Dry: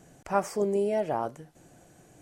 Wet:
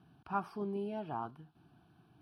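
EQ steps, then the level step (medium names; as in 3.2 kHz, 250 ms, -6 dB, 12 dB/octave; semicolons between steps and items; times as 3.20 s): boxcar filter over 6 samples; high-pass 73 Hz; static phaser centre 2 kHz, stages 6; -4.5 dB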